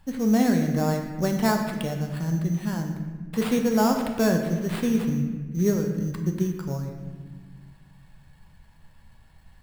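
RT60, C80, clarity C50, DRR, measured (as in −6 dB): 1.4 s, 7.0 dB, 5.5 dB, 3.0 dB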